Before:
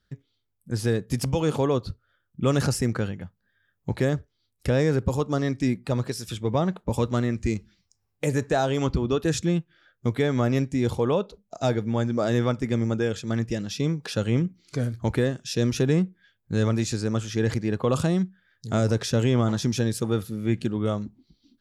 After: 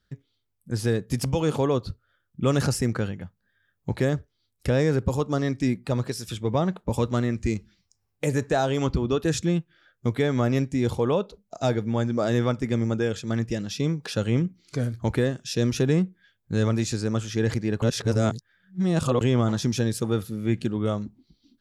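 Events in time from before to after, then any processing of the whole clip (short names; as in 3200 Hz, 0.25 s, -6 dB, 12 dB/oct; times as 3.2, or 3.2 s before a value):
17.82–19.21 reverse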